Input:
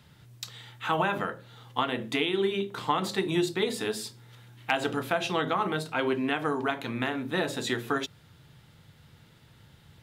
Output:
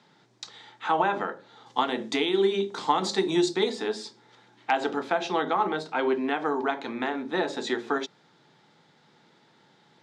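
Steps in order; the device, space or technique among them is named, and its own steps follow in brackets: 1.66–3.70 s: tone controls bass +4 dB, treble +11 dB; television speaker (cabinet simulation 200–6600 Hz, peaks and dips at 380 Hz +4 dB, 830 Hz +7 dB, 2.8 kHz -6 dB)

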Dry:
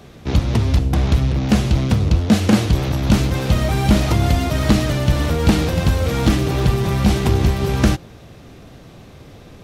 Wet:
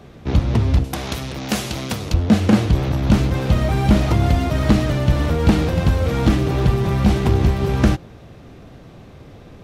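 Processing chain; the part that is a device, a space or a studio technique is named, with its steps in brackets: 0.84–2.14 s: RIAA curve recording; behind a face mask (treble shelf 3.3 kHz -8 dB)

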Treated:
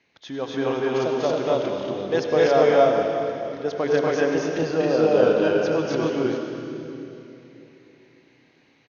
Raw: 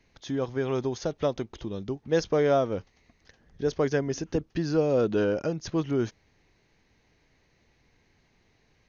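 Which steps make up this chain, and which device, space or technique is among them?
stadium PA (high-pass 150 Hz 6 dB/octave; peaking EQ 2.8 kHz +5 dB 1.5 oct; loudspeakers at several distances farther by 83 m -1 dB, 94 m 0 dB; reverberation RT60 3.3 s, pre-delay 73 ms, DRR 3 dB); dynamic bell 730 Hz, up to +5 dB, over -35 dBFS, Q 1.6; high-pass 180 Hz 6 dB/octave; distance through air 84 m

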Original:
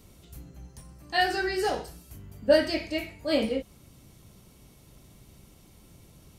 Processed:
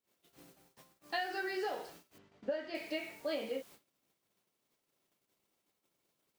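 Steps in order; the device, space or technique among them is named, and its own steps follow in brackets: baby monitor (band-pass 370–3900 Hz; compression 8:1, threshold -34 dBFS, peak gain reduction 18 dB; white noise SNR 18 dB; gate -55 dBFS, range -32 dB); 2.18–2.75 s: distance through air 160 m

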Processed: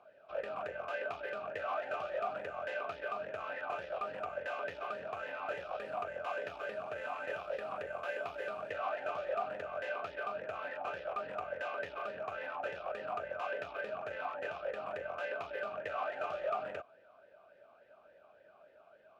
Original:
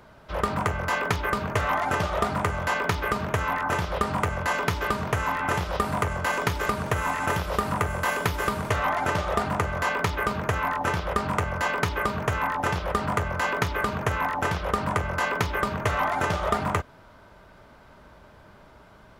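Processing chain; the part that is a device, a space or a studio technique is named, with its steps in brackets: talk box (valve stage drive 24 dB, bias 0.45; talking filter a-e 3.5 Hz); trim +2 dB

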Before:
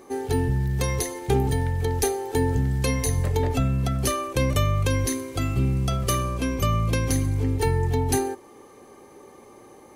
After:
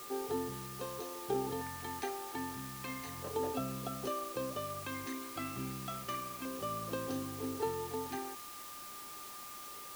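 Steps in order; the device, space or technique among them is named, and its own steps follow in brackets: shortwave radio (band-pass 280–2700 Hz; tremolo 0.55 Hz, depth 38%; LFO notch square 0.31 Hz 470–2100 Hz; whistle 1.2 kHz -42 dBFS; white noise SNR 9 dB); trim -7.5 dB

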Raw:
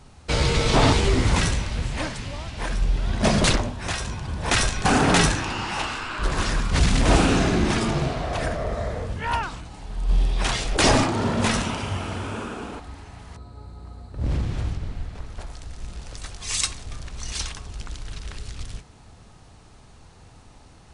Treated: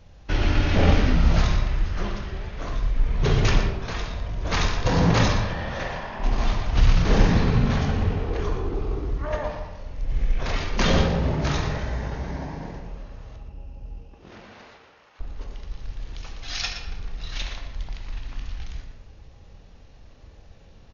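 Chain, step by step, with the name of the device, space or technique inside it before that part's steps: 14.00–15.18 s: high-pass 460 Hz -> 1.4 kHz 12 dB/octave; monster voice (pitch shift -7.5 st; bass shelf 160 Hz +6.5 dB; delay 119 ms -11 dB; reverberation RT60 1.1 s, pre-delay 13 ms, DRR 3.5 dB); trim -5 dB

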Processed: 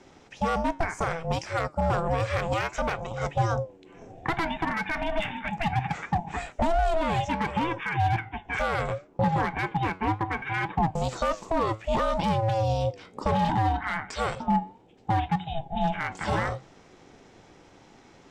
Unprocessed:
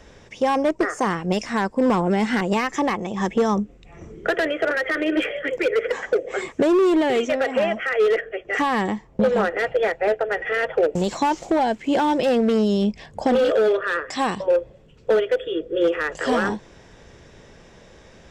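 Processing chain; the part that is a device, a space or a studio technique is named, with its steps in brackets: alien voice (ring modulator 330 Hz; flange 0.65 Hz, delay 5.3 ms, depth 5.6 ms, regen +83%); trim +1.5 dB

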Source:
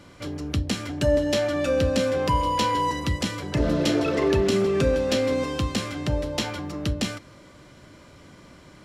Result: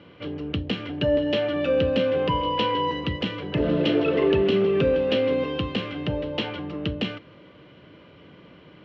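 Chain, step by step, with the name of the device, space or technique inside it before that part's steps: guitar cabinet (cabinet simulation 81–3500 Hz, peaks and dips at 170 Hz +5 dB, 320 Hz +3 dB, 460 Hz +8 dB, 2.9 kHz +9 dB); trim -2.5 dB

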